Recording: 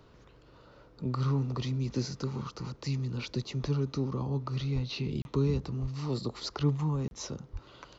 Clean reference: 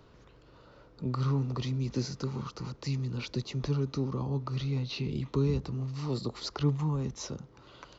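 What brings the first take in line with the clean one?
high-pass at the plosives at 0:04.74/0:05.81/0:07.52
repair the gap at 0:05.22/0:07.08, 31 ms

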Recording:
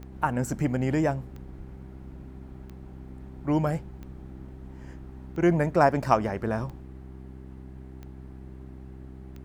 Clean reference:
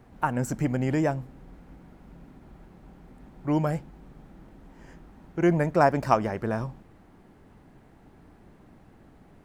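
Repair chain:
click removal
hum removal 65 Hz, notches 6
0:01.57–0:01.69: high-pass filter 140 Hz 24 dB per octave

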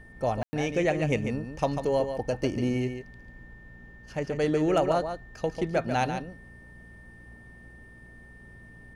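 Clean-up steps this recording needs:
hum removal 58.6 Hz, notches 4
notch filter 1,800 Hz, Q 30
ambience match 0:00.43–0:00.53
echo removal 143 ms −8 dB

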